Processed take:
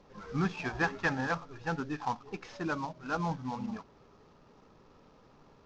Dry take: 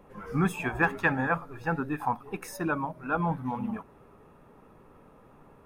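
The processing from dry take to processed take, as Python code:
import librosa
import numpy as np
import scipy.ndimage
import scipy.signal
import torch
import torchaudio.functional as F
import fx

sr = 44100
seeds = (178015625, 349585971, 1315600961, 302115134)

y = fx.cvsd(x, sr, bps=32000)
y = F.gain(torch.from_numpy(y), -4.5).numpy()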